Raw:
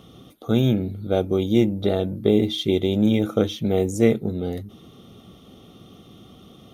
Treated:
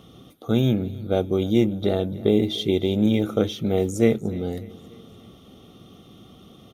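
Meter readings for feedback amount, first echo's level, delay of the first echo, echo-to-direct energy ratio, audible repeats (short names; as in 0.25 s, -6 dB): 50%, -20.0 dB, 0.295 s, -19.0 dB, 3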